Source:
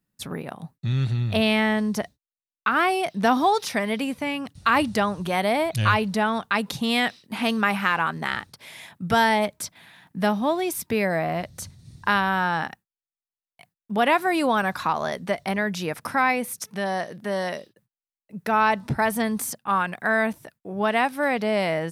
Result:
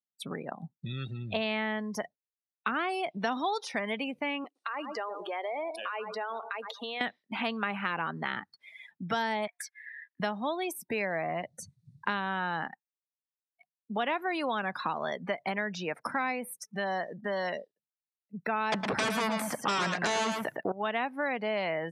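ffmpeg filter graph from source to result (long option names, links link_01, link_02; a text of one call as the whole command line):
ffmpeg -i in.wav -filter_complex "[0:a]asettb=1/sr,asplit=3[link_01][link_02][link_03];[link_01]atrim=end=4.444[link_04];[link_02]atrim=start=4.44:end=7.01,asetpts=PTS-STARTPTS,afade=type=in:duration=0.004:curve=qsin,afade=type=out:start_time=2.566:duration=0.004:curve=qsin,highpass=frequency=350:width=0.5412,highpass=frequency=350:width=1.3066,asplit=2[link_05][link_06];[link_06]adelay=115,lowpass=frequency=1600:poles=1,volume=-14.5dB,asplit=2[link_07][link_08];[link_08]adelay=115,lowpass=frequency=1600:poles=1,volume=0.44,asplit=2[link_09][link_10];[link_10]adelay=115,lowpass=frequency=1600:poles=1,volume=0.44,asplit=2[link_11][link_12];[link_12]adelay=115,lowpass=frequency=1600:poles=1,volume=0.44[link_13];[link_05][link_07][link_09][link_11][link_13]amix=inputs=5:normalize=0,atrim=end_sample=113337,acompressor=threshold=-31dB:ratio=4:attack=3.2:release=140:knee=1:detection=peak[link_14];[link_03]atrim=start=7.006[link_15];[link_04][link_14]acrossfade=duration=0.004:curve1=hsin:curve2=qsin[link_16];[link_16][link_15]acrossfade=duration=0.004:curve1=qsin:curve2=hsin,asettb=1/sr,asplit=3[link_17][link_18][link_19];[link_17]atrim=end=9.474[link_20];[link_18]atrim=start=9.47:end=10.2,asetpts=PTS-STARTPTS,afade=type=in:duration=0.004:curve=qsin,afade=type=out:start_time=0.726:duration=0.004:curve=qsin,highpass=frequency=1600:width_type=q:width=3.9,afreqshift=84[link_21];[link_19]atrim=start=10.196[link_22];[link_20][link_21]acrossfade=duration=0.004:curve1=hsin:curve2=qsin[link_23];[link_23][link_22]acrossfade=duration=0.004:curve1=qsin:curve2=hsin,asettb=1/sr,asplit=3[link_24][link_25][link_26];[link_24]atrim=end=18.724[link_27];[link_25]atrim=start=18.72:end=20.72,asetpts=PTS-STARTPTS,afade=type=in:duration=0.004:curve=qsin,afade=type=out:start_time=1.996:duration=0.004:curve=qsin,acrossover=split=3300[link_28][link_29];[link_29]acompressor=threshold=-44dB:ratio=4:attack=1:release=60[link_30];[link_28][link_30]amix=inputs=2:normalize=0,aeval=exprs='0.316*sin(PI/2*5.62*val(0)/0.316)':channel_layout=same,aecho=1:1:111:0.447,atrim=end_sample=88200[link_31];[link_26]atrim=start=20.716[link_32];[link_27][link_31]acrossfade=duration=0.004:curve1=hsin:curve2=qsin[link_33];[link_33][link_32]acrossfade=duration=0.004:curve1=qsin:curve2=hsin,highpass=170,afftdn=noise_reduction=30:noise_floor=-36,acrossover=split=610|2600[link_34][link_35][link_36];[link_34]acompressor=threshold=-37dB:ratio=4[link_37];[link_35]acompressor=threshold=-33dB:ratio=4[link_38];[link_36]acompressor=threshold=-42dB:ratio=4[link_39];[link_37][link_38][link_39]amix=inputs=3:normalize=0" out.wav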